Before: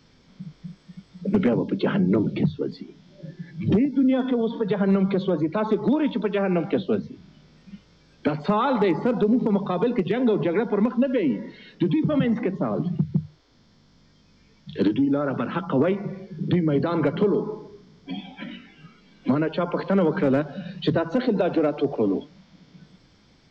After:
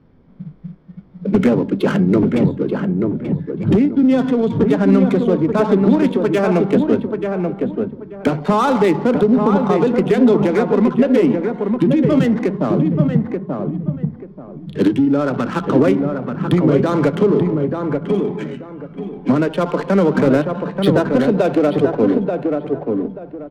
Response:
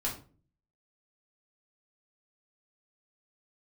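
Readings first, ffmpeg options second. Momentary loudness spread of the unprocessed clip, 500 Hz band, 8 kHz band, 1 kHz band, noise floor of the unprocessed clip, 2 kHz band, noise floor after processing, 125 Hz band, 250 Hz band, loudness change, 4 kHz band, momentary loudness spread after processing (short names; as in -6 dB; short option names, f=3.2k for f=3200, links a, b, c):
16 LU, +8.0 dB, n/a, +7.5 dB, -57 dBFS, +7.0 dB, -37 dBFS, +8.0 dB, +8.0 dB, +7.0 dB, +4.5 dB, 10 LU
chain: -filter_complex "[0:a]adynamicsmooth=sensitivity=6.5:basefreq=960,asplit=2[a][b];[b]adelay=884,lowpass=f=1.5k:p=1,volume=-4dB,asplit=2[c][d];[d]adelay=884,lowpass=f=1.5k:p=1,volume=0.27,asplit=2[e][f];[f]adelay=884,lowpass=f=1.5k:p=1,volume=0.27,asplit=2[g][h];[h]adelay=884,lowpass=f=1.5k:p=1,volume=0.27[i];[a][c][e][g][i]amix=inputs=5:normalize=0,asplit=2[j][k];[1:a]atrim=start_sample=2205[l];[k][l]afir=irnorm=-1:irlink=0,volume=-23dB[m];[j][m]amix=inputs=2:normalize=0,volume=6dB"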